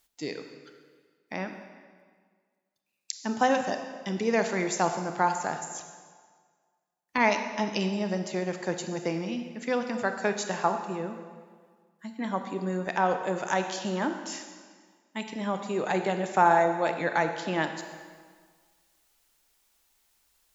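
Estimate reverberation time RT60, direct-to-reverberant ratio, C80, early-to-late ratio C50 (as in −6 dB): 1.7 s, 6.5 dB, 8.5 dB, 7.5 dB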